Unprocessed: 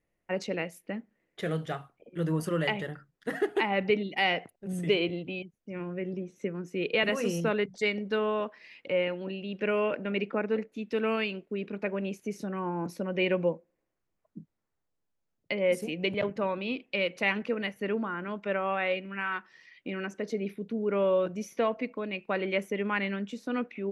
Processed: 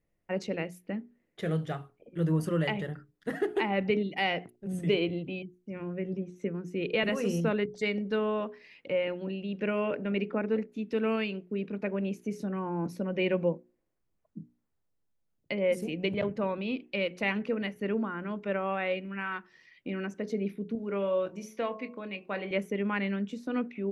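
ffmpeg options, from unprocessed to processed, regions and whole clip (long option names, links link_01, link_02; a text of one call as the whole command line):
ffmpeg -i in.wav -filter_complex "[0:a]asettb=1/sr,asplit=3[link_01][link_02][link_03];[link_01]atrim=end=20.754[link_04];[link_02]atrim=start=20.75:end=22.51,asetpts=PTS-STARTPTS,afade=type=in:duration=0.004:curve=qsin,afade=type=out:start_time=1.756:duration=0.004:curve=qsin,lowshelf=frequency=490:gain=-7,asplit=2[link_05][link_06];[link_06]adelay=25,volume=-12.5dB[link_07];[link_05][link_07]amix=inputs=2:normalize=0,atrim=end_sample=77616,bandreject=frequency=54.22:width_type=h:width=4,bandreject=frequency=108.44:width_type=h:width=4,bandreject=frequency=162.66:width_type=h:width=4,bandreject=frequency=216.88:width_type=h:width=4,bandreject=frequency=271.1:width_type=h:width=4,bandreject=frequency=325.32:width_type=h:width=4,bandreject=frequency=379.54:width_type=h:width=4,bandreject=frequency=433.76:width_type=h:width=4,bandreject=frequency=487.98:width_type=h:width=4,bandreject=frequency=542.2:width_type=h:width=4,bandreject=frequency=596.42:width_type=h:width=4,bandreject=frequency=650.64:width_type=h:width=4,bandreject=frequency=704.86:width_type=h:width=4,bandreject=frequency=759.08:width_type=h:width=4,bandreject=frequency=813.3:width_type=h:width=4,bandreject=frequency=867.52:width_type=h:width=4,bandreject=frequency=921.74:width_type=h:width=4,bandreject=frequency=975.96:width_type=h:width=4,bandreject=frequency=1030.18:width_type=h:width=4,bandreject=frequency=1084.4:width_type=h:width=4,bandreject=frequency=1138.62:width_type=h:width=4[link_08];[link_03]atrim=start=22.506[link_09];[link_04][link_08]acrossfade=duration=0.004:curve1=hsin:curve2=qsin[link_10];[link_10][link_09]acrossfade=duration=0.004:curve1=qsin:curve2=hsin,lowshelf=frequency=360:gain=8,bandreject=frequency=60:width_type=h:width=6,bandreject=frequency=120:width_type=h:width=6,bandreject=frequency=180:width_type=h:width=6,bandreject=frequency=240:width_type=h:width=6,bandreject=frequency=300:width_type=h:width=6,bandreject=frequency=360:width_type=h:width=6,bandreject=frequency=420:width_type=h:width=6,volume=-3.5dB" out.wav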